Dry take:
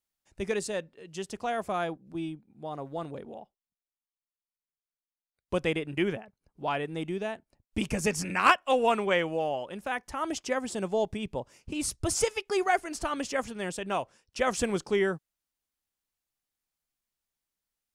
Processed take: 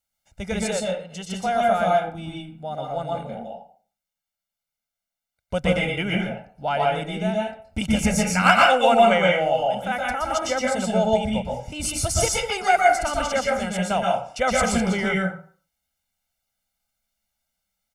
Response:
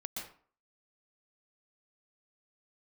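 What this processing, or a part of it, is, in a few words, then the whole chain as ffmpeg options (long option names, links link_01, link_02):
microphone above a desk: -filter_complex "[0:a]aecho=1:1:1.4:0.79[link_01];[1:a]atrim=start_sample=2205[link_02];[link_01][link_02]afir=irnorm=-1:irlink=0,volume=7dB"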